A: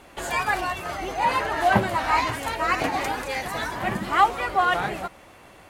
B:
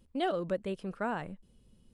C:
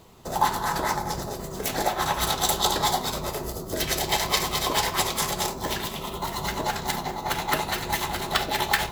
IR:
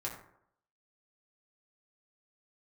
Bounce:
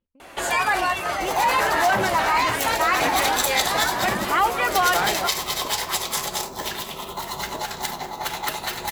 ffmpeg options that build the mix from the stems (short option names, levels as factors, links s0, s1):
-filter_complex "[0:a]adelay=200,volume=1.19[s0];[1:a]lowpass=2800,acompressor=threshold=0.0126:ratio=6,volume=0.133[s1];[2:a]acrossover=split=120|3000[s2][s3][s4];[s3]acompressor=threshold=0.0501:ratio=6[s5];[s2][s5][s4]amix=inputs=3:normalize=0,adelay=950,volume=1.19[s6];[s0][s1]amix=inputs=2:normalize=0,acontrast=31,alimiter=limit=0.266:level=0:latency=1:release=10,volume=1[s7];[s6][s7]amix=inputs=2:normalize=0,lowshelf=f=280:g=-9.5"